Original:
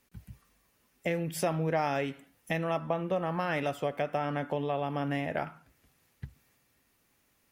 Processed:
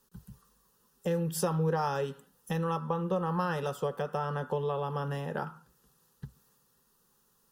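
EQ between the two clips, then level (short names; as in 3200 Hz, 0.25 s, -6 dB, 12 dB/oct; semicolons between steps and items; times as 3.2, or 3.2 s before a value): fixed phaser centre 440 Hz, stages 8; +3.5 dB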